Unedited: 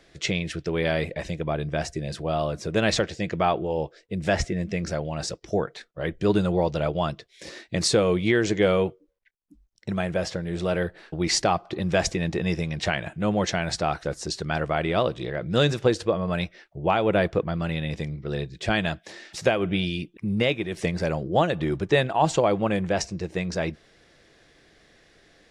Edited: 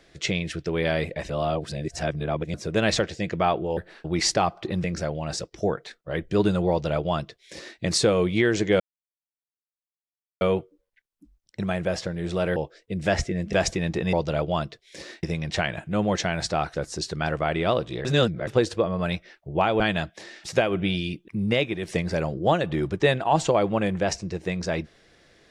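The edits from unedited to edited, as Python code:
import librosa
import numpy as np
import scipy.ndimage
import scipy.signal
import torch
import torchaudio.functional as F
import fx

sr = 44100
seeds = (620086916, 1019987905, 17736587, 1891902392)

y = fx.edit(x, sr, fx.reverse_span(start_s=1.3, length_s=1.24),
    fx.swap(start_s=3.77, length_s=0.97, other_s=10.85, other_length_s=1.07),
    fx.duplicate(start_s=6.6, length_s=1.1, to_s=12.52),
    fx.insert_silence(at_s=8.7, length_s=1.61),
    fx.reverse_span(start_s=15.34, length_s=0.42),
    fx.cut(start_s=17.09, length_s=1.6), tone=tone)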